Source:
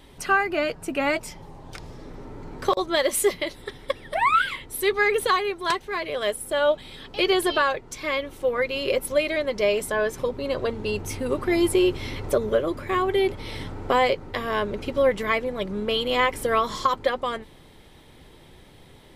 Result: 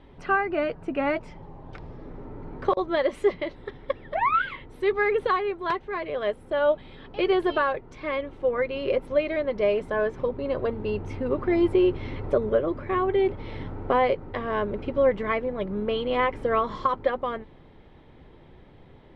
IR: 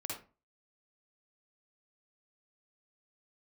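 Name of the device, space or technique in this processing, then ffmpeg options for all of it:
phone in a pocket: -af "lowpass=3.1k,highshelf=f=2.1k:g=-10"

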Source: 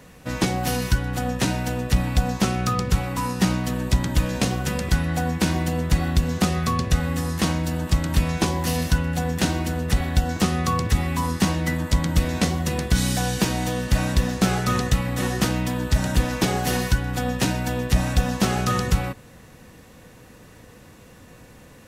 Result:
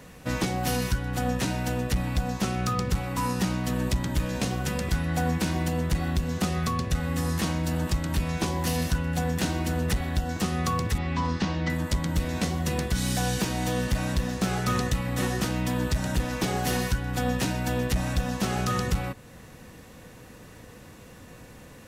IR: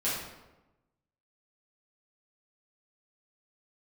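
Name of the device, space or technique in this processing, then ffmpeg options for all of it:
limiter into clipper: -filter_complex "[0:a]alimiter=limit=-15dB:level=0:latency=1:release=442,asoftclip=type=hard:threshold=-18.5dB,asettb=1/sr,asplit=3[a][b][c];[a]atrim=end=10.984[d];[b]atrim=start=10.98:end=11.7,asetpts=PTS-STARTPTS,afade=t=in:d=0.004:c=qsin,afade=t=out:st=0.716:d=0.004:c=qsin,lowpass=f=5.4k:w=0.5412,lowpass=f=5.4k:w=1.3066[e];[c]atrim=start=11.696[f];[d][e]acrossfade=d=0.004:c1=hsin:c2=qsin[g];[g][f]acrossfade=d=0.004:c1=qsin:c2=hsin"

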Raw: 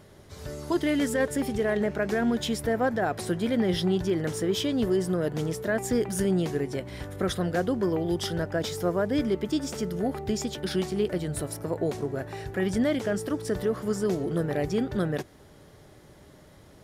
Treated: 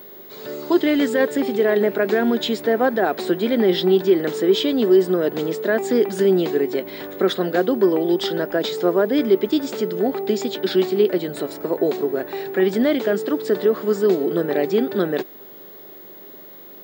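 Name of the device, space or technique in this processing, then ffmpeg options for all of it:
old television with a line whistle: -af "highpass=f=210:w=0.5412,highpass=f=210:w=1.3066,equalizer=f=390:t=q:w=4:g=6,equalizer=f=3.9k:t=q:w=4:g=5,equalizer=f=5.8k:t=q:w=4:g=-10,lowpass=f=6.8k:w=0.5412,lowpass=f=6.8k:w=1.3066,aeval=exprs='val(0)+0.00501*sin(2*PI*15625*n/s)':c=same,volume=6.5dB"

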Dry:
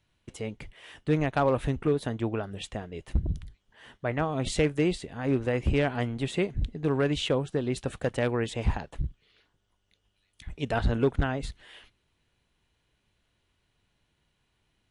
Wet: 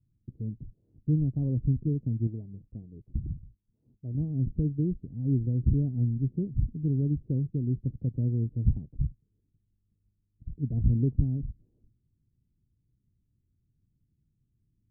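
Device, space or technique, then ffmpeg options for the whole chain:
the neighbour's flat through the wall: -filter_complex "[0:a]lowpass=f=280:w=0.5412,lowpass=f=280:w=1.3066,equalizer=f=120:t=o:w=0.74:g=7,asettb=1/sr,asplit=3[a][b][c];[a]atrim=end=2.274[d];[b]atrim=start=2.27:end=4.15,asetpts=PTS-STARTPTS,afade=t=in:d=0.004:c=qsin,afade=t=out:st=1.876:d=0.004:c=qsin,lowshelf=f=350:g=-7.5[e];[c]atrim=start=4.146[f];[d][e]acrossfade=d=0.004:c1=hsin:c2=qsin[g];[g][f]acrossfade=d=0.004:c1=qsin:c2=hsin"

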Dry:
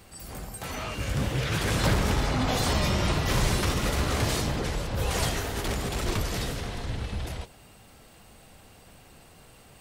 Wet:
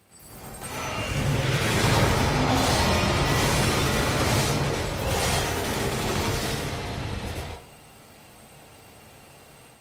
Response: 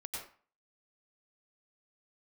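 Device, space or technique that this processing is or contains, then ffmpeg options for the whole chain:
far-field microphone of a smart speaker: -filter_complex "[1:a]atrim=start_sample=2205[a];[0:a][a]afir=irnorm=-1:irlink=0,highpass=89,dynaudnorm=f=420:g=3:m=5.5dB" -ar 48000 -c:a libopus -b:a 32k

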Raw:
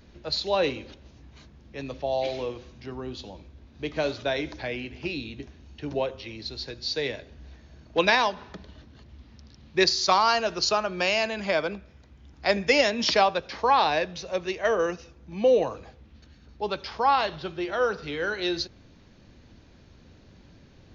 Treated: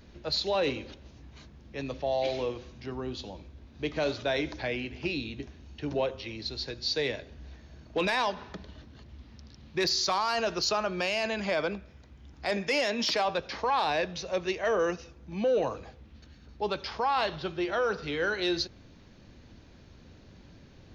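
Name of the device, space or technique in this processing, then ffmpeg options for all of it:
soft clipper into limiter: -filter_complex "[0:a]asoftclip=type=tanh:threshold=-12dB,alimiter=limit=-20dB:level=0:latency=1:release=11,asettb=1/sr,asplit=3[a][b][c];[a]atrim=end=12.504[d];[b]atrim=start=12.5:end=13.25,asetpts=PTS-STARTPTS,afade=t=in:d=0.004:c=qsin,afade=t=out:st=0.746:d=0.004:c=qsin,highpass=f=210:p=1[e];[c]atrim=start=13.246[f];[d][e]acrossfade=d=0.004:c1=hsin:c2=qsin[g];[g][f]acrossfade=d=0.004:c1=qsin:c2=hsin"

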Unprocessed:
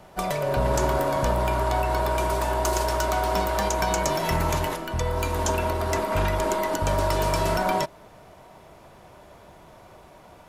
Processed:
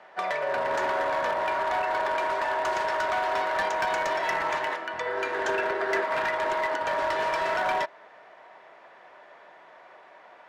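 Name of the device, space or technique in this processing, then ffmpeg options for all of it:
megaphone: -filter_complex "[0:a]highpass=560,lowpass=3.1k,equalizer=f=1.8k:t=o:w=0.41:g=9,asoftclip=type=hard:threshold=-21.5dB,asettb=1/sr,asplit=3[a][b][c];[a]atrim=end=5.064[d];[b]atrim=start=5.06:end=6.04,asetpts=PTS-STARTPTS,afade=t=in:d=0.004:c=qsin,afade=t=out:st=0.976:d=0.004:c=qsin,equalizer=f=400:t=o:w=0.33:g=11,equalizer=f=1k:t=o:w=0.33:g=-4,equalizer=f=1.6k:t=o:w=0.33:g=5[e];[c]atrim=start=6.036[f];[d][e]acrossfade=d=0.004:c1=hsin:c2=qsin[g];[g][f]acrossfade=d=0.004:c1=qsin:c2=hsin"

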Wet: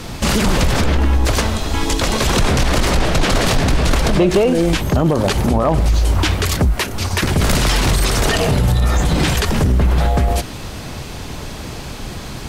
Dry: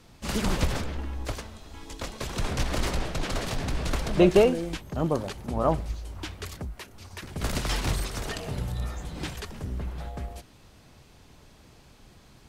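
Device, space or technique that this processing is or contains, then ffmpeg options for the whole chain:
loud club master: -af "acompressor=threshold=-29dB:ratio=2.5,asoftclip=type=hard:threshold=-21dB,alimiter=level_in=31dB:limit=-1dB:release=50:level=0:latency=1,volume=-6dB"

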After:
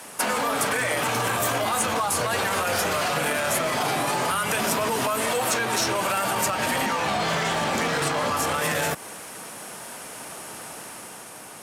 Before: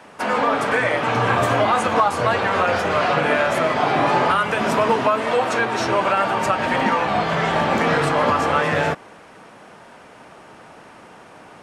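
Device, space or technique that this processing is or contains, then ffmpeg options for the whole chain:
FM broadcast chain: -filter_complex "[0:a]asettb=1/sr,asplit=3[a][b][c];[a]atrim=end=6.864[d];[b]atrim=start=6.86:end=8.37,asetpts=PTS-STARTPTS,afade=t=in:d=0.004:c=qsin,afade=t=out:st=1.506:d=0.004:c=qsin,lowpass=6.4k[e];[c]atrim=start=8.366[f];[d][e]acrossfade=d=0.004:c1=hsin:c2=qsin[g];[g][f]acrossfade=d=0.004:c1=qsin:c2=hsin,highpass=61,dynaudnorm=f=150:g=11:m=3dB,acrossover=split=160|7100[h][i][j];[h]acompressor=threshold=-35dB:ratio=4[k];[i]acompressor=threshold=-21dB:ratio=4[l];[j]acompressor=threshold=-51dB:ratio=4[m];[k][l][m]amix=inputs=3:normalize=0,aemphasis=mode=production:type=50fm,alimiter=limit=-16.5dB:level=0:latency=1:release=13,asoftclip=type=hard:threshold=-19dB,lowpass=f=15k:w=0.5412,lowpass=f=15k:w=1.3066,aemphasis=mode=production:type=50fm"

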